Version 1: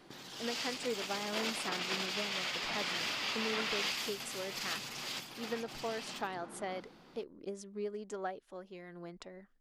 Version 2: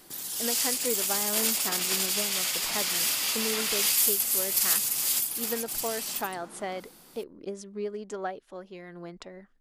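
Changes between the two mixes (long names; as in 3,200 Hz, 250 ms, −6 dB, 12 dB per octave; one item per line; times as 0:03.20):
speech +5.5 dB
background: remove high-frequency loss of the air 220 metres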